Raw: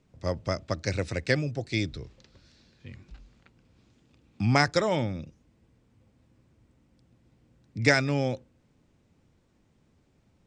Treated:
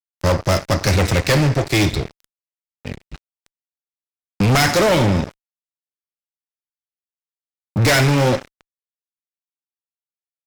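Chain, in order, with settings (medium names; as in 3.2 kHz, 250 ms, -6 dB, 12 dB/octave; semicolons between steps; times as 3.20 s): two-slope reverb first 0.51 s, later 2.7 s, from -17 dB, DRR 10 dB; fuzz box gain 33 dB, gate -42 dBFS; trim +1 dB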